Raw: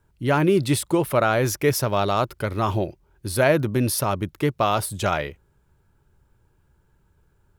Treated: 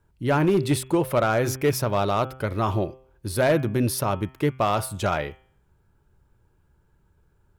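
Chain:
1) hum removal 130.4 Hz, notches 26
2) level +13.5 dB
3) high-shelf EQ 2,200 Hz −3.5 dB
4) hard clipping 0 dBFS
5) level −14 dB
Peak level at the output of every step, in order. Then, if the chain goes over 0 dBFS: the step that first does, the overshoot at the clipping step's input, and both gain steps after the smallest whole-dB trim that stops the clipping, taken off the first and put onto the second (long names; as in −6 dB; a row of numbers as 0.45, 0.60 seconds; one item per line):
−5.5, +8.0, +7.0, 0.0, −14.0 dBFS
step 2, 7.0 dB
step 2 +6.5 dB, step 5 −7 dB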